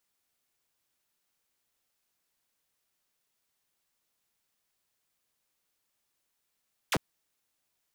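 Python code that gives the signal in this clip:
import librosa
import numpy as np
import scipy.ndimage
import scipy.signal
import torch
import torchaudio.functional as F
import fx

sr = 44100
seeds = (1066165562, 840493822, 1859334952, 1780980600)

y = fx.laser_zap(sr, level_db=-22.0, start_hz=4000.0, end_hz=83.0, length_s=0.05, wave='saw')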